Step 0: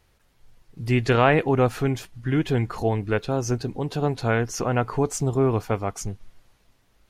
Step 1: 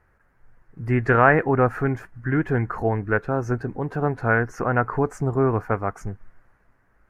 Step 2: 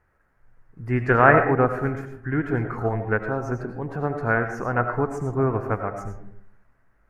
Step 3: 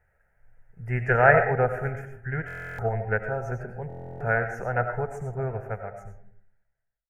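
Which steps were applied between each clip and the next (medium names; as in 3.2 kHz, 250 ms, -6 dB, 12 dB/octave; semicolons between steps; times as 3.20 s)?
resonant high shelf 2.4 kHz -13.5 dB, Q 3
algorithmic reverb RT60 0.61 s, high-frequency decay 0.4×, pre-delay 55 ms, DRR 5 dB; upward expansion 1.5:1, over -22 dBFS; trim +1 dB
fade out at the end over 2.34 s; static phaser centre 1.1 kHz, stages 6; buffer glitch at 2.46/3.88 s, samples 1024, times 13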